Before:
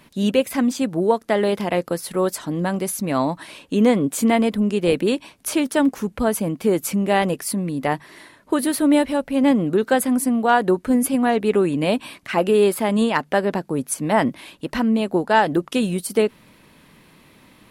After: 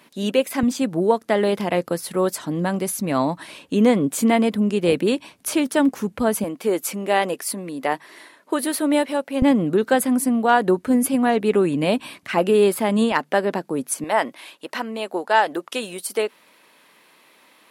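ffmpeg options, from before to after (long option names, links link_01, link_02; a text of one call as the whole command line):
ffmpeg -i in.wav -af "asetnsamples=nb_out_samples=441:pad=0,asendcmd='0.63 highpass f 85;6.44 highpass f 330;9.42 highpass f 90;13.12 highpass f 210;14.04 highpass f 500',highpass=250" out.wav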